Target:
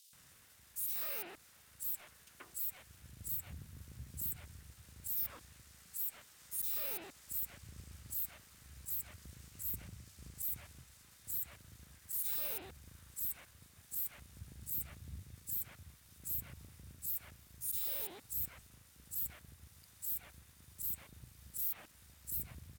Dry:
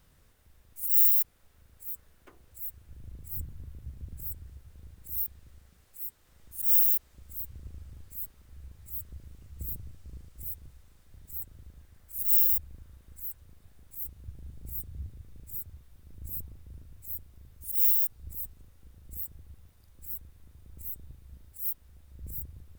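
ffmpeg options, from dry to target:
ffmpeg -i in.wav -filter_complex "[0:a]aeval=exprs='if(lt(val(0),0),0.708*val(0),val(0))':channel_layout=same,highpass=170,aemphasis=mode=reproduction:type=50fm,acrossover=split=2500[link_01][link_02];[link_02]acompressor=threshold=-55dB:ratio=4:attack=1:release=60[link_03];[link_01][link_03]amix=inputs=2:normalize=0,equalizer=frequency=400:width_type=o:width=3:gain=-13.5,alimiter=level_in=24dB:limit=-24dB:level=0:latency=1,volume=-24dB,crystalizer=i=2.5:c=0,asoftclip=type=tanh:threshold=-36.5dB,acrossover=split=3400[link_04][link_05];[link_04]adelay=130[link_06];[link_06][link_05]amix=inputs=2:normalize=0,volume=10dB" out.wav

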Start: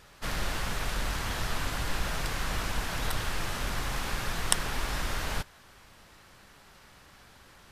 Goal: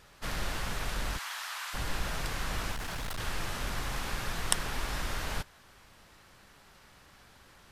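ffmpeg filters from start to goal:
ffmpeg -i in.wav -filter_complex "[0:a]asplit=3[link_01][link_02][link_03];[link_01]afade=type=out:start_time=1.17:duration=0.02[link_04];[link_02]highpass=frequency=900:width=0.5412,highpass=frequency=900:width=1.3066,afade=type=in:start_time=1.17:duration=0.02,afade=type=out:start_time=1.73:duration=0.02[link_05];[link_03]afade=type=in:start_time=1.73:duration=0.02[link_06];[link_04][link_05][link_06]amix=inputs=3:normalize=0,asettb=1/sr,asplit=3[link_07][link_08][link_09];[link_07]atrim=end=2.724[link_10];[link_08]atrim=start=2.72:end=3.2,asetpts=PTS-STARTPTS,afade=type=in:duration=0.004:curve=qsin,afade=type=out:start_time=0.476:duration=0.004:curve=qsin,asoftclip=type=hard:threshold=-30.5dB[link_11];[link_09]atrim=start=3.196[link_12];[link_10][link_11]acrossfade=duration=0.004:curve1=hsin:curve2=qsin[link_13];[link_13][link_12]acrossfade=duration=0.004:curve1=qsin:curve2=hsin,volume=-2.5dB" out.wav

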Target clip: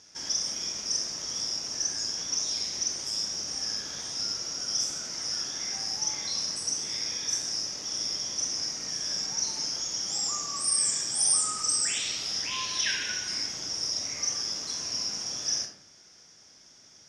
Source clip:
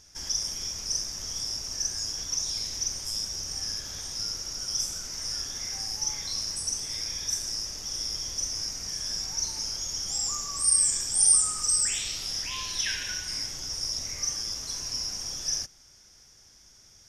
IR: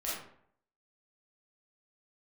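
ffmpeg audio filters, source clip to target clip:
-filter_complex "[0:a]highpass=200,lowpass=6500,asplit=2[link_01][link_02];[1:a]atrim=start_sample=2205,lowshelf=frequency=250:gain=12[link_03];[link_02][link_03]afir=irnorm=-1:irlink=0,volume=-7.5dB[link_04];[link_01][link_04]amix=inputs=2:normalize=0"

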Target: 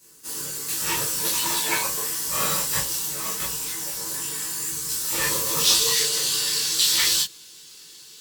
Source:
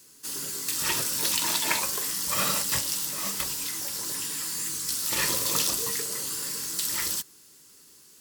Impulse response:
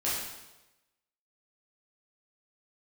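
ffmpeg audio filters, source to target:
-filter_complex "[0:a]asetnsamples=nb_out_samples=441:pad=0,asendcmd='5.64 equalizer g 13.5',equalizer=frequency=3700:width_type=o:width=1.5:gain=-2.5[link_01];[1:a]atrim=start_sample=2205,atrim=end_sample=3528,asetrate=61740,aresample=44100[link_02];[link_01][link_02]afir=irnorm=-1:irlink=0"

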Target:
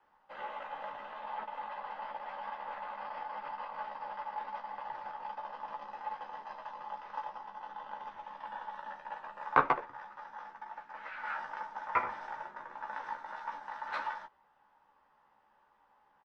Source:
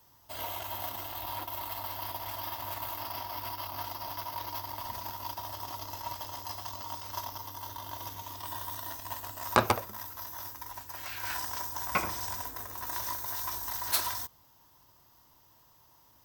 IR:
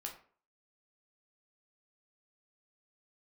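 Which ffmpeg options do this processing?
-filter_complex "[0:a]lowpass=frequency=1700:width=0.5412,lowpass=frequency=1700:width=1.3066,aderivative,bandreject=frequency=770:width=12,afreqshift=-93,asplit=2[link_01][link_02];[link_02]adelay=14,volume=-5dB[link_03];[link_01][link_03]amix=inputs=2:normalize=0,volume=16dB"

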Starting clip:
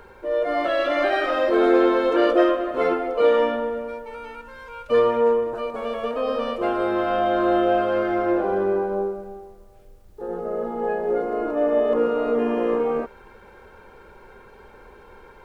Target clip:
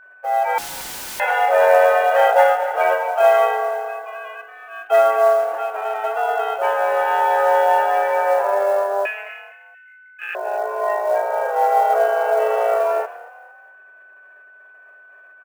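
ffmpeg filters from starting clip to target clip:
ffmpeg -i in.wav -filter_complex "[0:a]agate=range=-33dB:threshold=-36dB:ratio=3:detection=peak,aemphasis=mode=production:type=cd,asettb=1/sr,asplit=3[link_01][link_02][link_03];[link_01]atrim=end=5.404[link_04];[link_02]atrim=start=5.4:end=6.11,asetpts=PTS-STARTPTS,afade=type=in:duration=0.004:curve=qsin,afade=type=out:start_time=0.706:duration=0.004:curve=qsin,adynamicsmooth=sensitivity=6.5:basefreq=820[link_05];[link_03]atrim=start=6.106[link_06];[link_04][link_05]acrossfade=duration=0.004:curve1=hsin:curve2=qsin[link_07];[link_07][link_06]acrossfade=duration=0.004:curve1=qsin:curve2=hsin,asettb=1/sr,asplit=3[link_08][link_09][link_10];[link_08]atrim=end=9.054[link_11];[link_09]atrim=start=9.05:end=10.35,asetpts=PTS-STARTPTS,afade=type=in:duration=0.004:curve=qsin,afade=type=out:start_time=1.296:duration=0.004:curve=qsin,aeval=exprs='val(0)*sin(2*PI*1900*n/s)':channel_layout=same[link_12];[link_10]atrim=start=10.346[link_13];[link_11][link_12]acrossfade=duration=0.004:curve1=hsin:curve2=qsin[link_14];[link_14][link_13]acrossfade=duration=0.004:curve1=qsin:curve2=hsin,highpass=frequency=150:width_type=q:width=0.5412,highpass=frequency=150:width_type=q:width=1.307,lowpass=frequency=2700:width_type=q:width=0.5176,lowpass=frequency=2700:width_type=q:width=0.7071,lowpass=frequency=2700:width_type=q:width=1.932,afreqshift=200,acrusher=bits=7:mode=log:mix=0:aa=0.000001,asettb=1/sr,asplit=3[link_15][link_16][link_17];[link_15]atrim=end=0.584[link_18];[link_16]atrim=start=0.58:end=1.2,asetpts=PTS-STARTPTS,afade=type=in:duration=0.004:curve=qsin,afade=type=out:start_time=0.616:duration=0.004:curve=qsin,aeval=exprs='(mod(35.5*val(0)+1,2)-1)/35.5':channel_layout=same[link_19];[link_17]atrim=start=1.196[link_20];[link_18][link_19]acrossfade=duration=0.004:curve1=hsin:curve2=qsin[link_21];[link_21][link_20]acrossfade=duration=0.004:curve1=qsin:curve2=hsin,asplit=2[link_22][link_23];[link_23]asplit=3[link_24][link_25][link_26];[link_24]adelay=230,afreqshift=36,volume=-19dB[link_27];[link_25]adelay=460,afreqshift=72,volume=-26.3dB[link_28];[link_26]adelay=690,afreqshift=108,volume=-33.7dB[link_29];[link_27][link_28][link_29]amix=inputs=3:normalize=0[link_30];[link_22][link_30]amix=inputs=2:normalize=0,aeval=exprs='val(0)+0.00398*sin(2*PI*1500*n/s)':channel_layout=same,volume=4dB" out.wav

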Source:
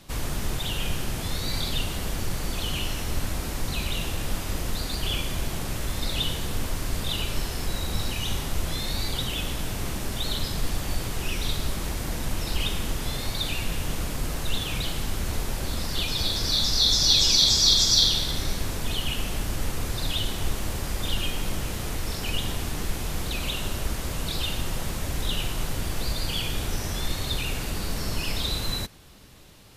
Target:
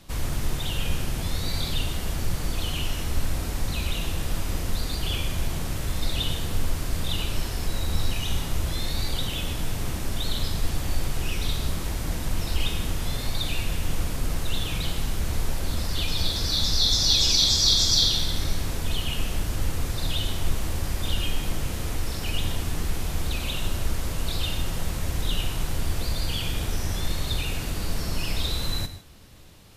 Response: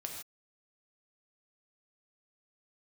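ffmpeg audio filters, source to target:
-filter_complex "[0:a]asplit=2[link_01][link_02];[1:a]atrim=start_sample=2205,lowshelf=frequency=130:gain=8.5[link_03];[link_02][link_03]afir=irnorm=-1:irlink=0,volume=-0.5dB[link_04];[link_01][link_04]amix=inputs=2:normalize=0,volume=-6dB"

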